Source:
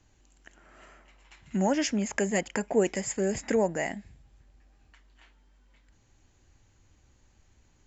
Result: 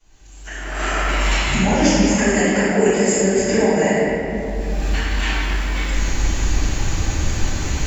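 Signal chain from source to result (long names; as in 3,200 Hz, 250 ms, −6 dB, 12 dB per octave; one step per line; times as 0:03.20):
camcorder AGC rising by 31 dB per second
high-shelf EQ 3,000 Hz +7.5 dB
convolution reverb RT60 3.1 s, pre-delay 3 ms, DRR −19 dB
level −12 dB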